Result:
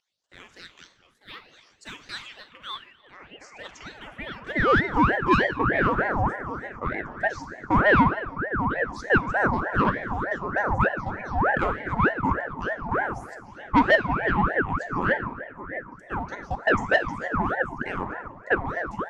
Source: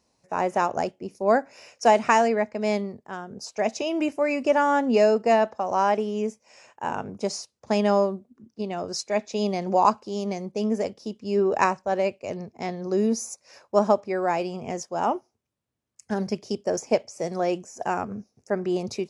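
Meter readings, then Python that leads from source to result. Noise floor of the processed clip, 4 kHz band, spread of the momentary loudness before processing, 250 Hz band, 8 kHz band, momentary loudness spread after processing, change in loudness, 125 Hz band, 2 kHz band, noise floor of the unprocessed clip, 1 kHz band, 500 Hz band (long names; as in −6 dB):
−57 dBFS, −1.0 dB, 13 LU, −1.0 dB, below −15 dB, 17 LU, +0.5 dB, +6.5 dB, +9.5 dB, −76 dBFS, 0.0 dB, −5.0 dB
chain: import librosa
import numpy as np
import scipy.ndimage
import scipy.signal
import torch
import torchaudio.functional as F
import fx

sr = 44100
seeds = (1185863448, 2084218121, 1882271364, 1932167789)

p1 = fx.riaa(x, sr, side='playback')
p2 = np.clip(p1, -10.0 ** (-19.0 / 20.0), 10.0 ** (-19.0 / 20.0))
p3 = p1 + (p2 * 10.0 ** (-7.0 / 20.0))
p4 = fx.add_hum(p3, sr, base_hz=50, snr_db=15)
p5 = fx.phaser_stages(p4, sr, stages=8, low_hz=150.0, high_hz=4300.0, hz=0.67, feedback_pct=25)
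p6 = p5 + fx.echo_stepped(p5, sr, ms=660, hz=680.0, octaves=0.7, feedback_pct=70, wet_db=-12.0, dry=0)
p7 = fx.filter_sweep_highpass(p6, sr, from_hz=3000.0, to_hz=530.0, start_s=2.29, end_s=5.71, q=4.2)
p8 = 10.0 ** (-9.5 / 20.0) * np.tanh(p7 / 10.0 ** (-9.5 / 20.0))
p9 = fx.rev_fdn(p8, sr, rt60_s=1.4, lf_ratio=0.95, hf_ratio=0.6, size_ms=29.0, drr_db=7.0)
p10 = fx.ring_lfo(p9, sr, carrier_hz=780.0, swing_pct=60, hz=3.3)
y = p10 * 10.0 ** (-3.5 / 20.0)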